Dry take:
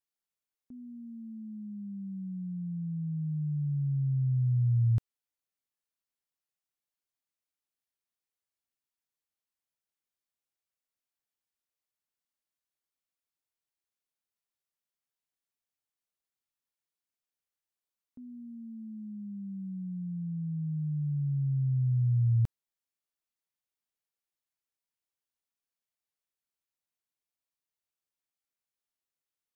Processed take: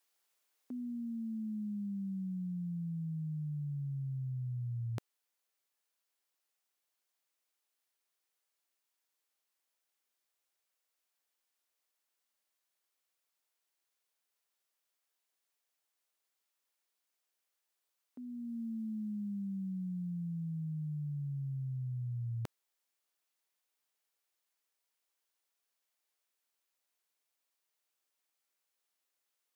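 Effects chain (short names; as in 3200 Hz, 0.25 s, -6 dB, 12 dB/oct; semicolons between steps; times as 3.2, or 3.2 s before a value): HPF 370 Hz 12 dB/oct; vocal rider within 3 dB; gain +10 dB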